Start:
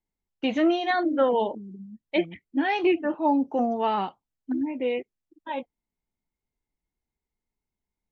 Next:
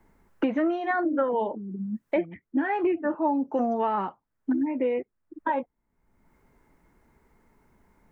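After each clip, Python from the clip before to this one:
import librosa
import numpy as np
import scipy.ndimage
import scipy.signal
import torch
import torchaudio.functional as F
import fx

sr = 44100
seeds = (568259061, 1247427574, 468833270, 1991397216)

y = fx.high_shelf_res(x, sr, hz=2300.0, db=-13.0, q=1.5)
y = fx.notch(y, sr, hz=760.0, q=12.0)
y = fx.band_squash(y, sr, depth_pct=100)
y = F.gain(torch.from_numpy(y), -1.5).numpy()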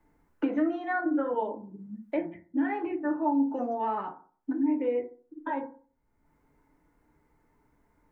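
y = fx.rev_fdn(x, sr, rt60_s=0.43, lf_ratio=1.05, hf_ratio=0.35, size_ms=20.0, drr_db=2.0)
y = F.gain(torch.from_numpy(y), -7.5).numpy()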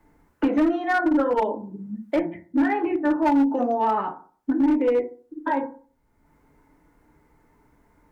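y = fx.clip_asym(x, sr, top_db=-24.0, bottom_db=-22.0)
y = F.gain(torch.from_numpy(y), 8.0).numpy()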